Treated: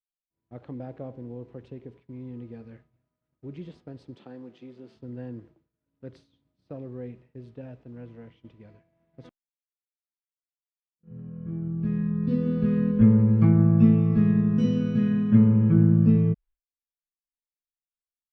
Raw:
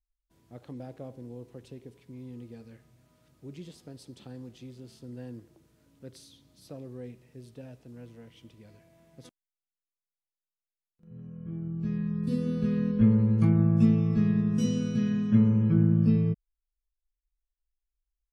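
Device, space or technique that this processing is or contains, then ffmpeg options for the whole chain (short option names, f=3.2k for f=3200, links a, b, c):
hearing-loss simulation: -filter_complex "[0:a]lowpass=2.3k,agate=range=-33dB:threshold=-50dB:ratio=3:detection=peak,asettb=1/sr,asplit=3[a][b][c];[a]atrim=end=4.154[d];[b]atrim=start=4.15:end=4.96,asetpts=PTS-STARTPTS,afade=t=in:d=0.004:c=qsin,afade=t=out:st=0.806:d=0.004:c=qsin,highpass=250[e];[c]atrim=start=4.956[f];[d][e]acrossfade=d=0.004:c1=hsin:c2=qsin[g];[g][f]acrossfade=d=0.004:c1=qsin:c2=hsin,volume=4dB"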